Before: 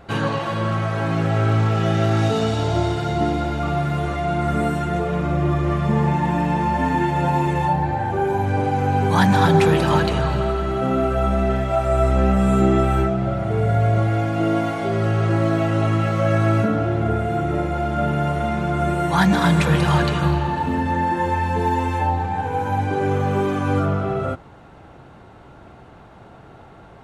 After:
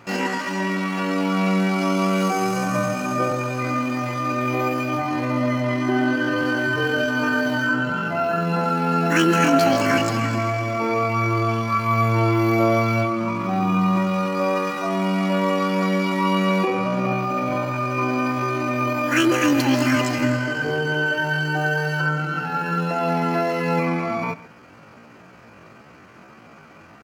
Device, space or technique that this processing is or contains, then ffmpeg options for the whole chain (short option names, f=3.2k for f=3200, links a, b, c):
chipmunk voice: -filter_complex "[0:a]highpass=49,asetrate=76340,aresample=44100,atempo=0.577676,asettb=1/sr,asplit=3[a][b][c];[a]atrim=end=5.614[d];[b]atrim=start=5.61:end=6.37,asetpts=PTS-STARTPTS,afade=t=in:d=0.004:c=qsin,afade=t=out:st=0.756:d=0.004:c=qsin,highshelf=f=8.8k:g=-5.5[e];[c]atrim=start=6.366[f];[d][e]acrossfade=d=0.004:c1=hsin:c2=qsin[g];[g][f]acrossfade=d=0.004:c1=qsin:c2=hsin,bandreject=f=3.6k:w=7.4,aecho=1:1:134:0.112,volume=-1.5dB"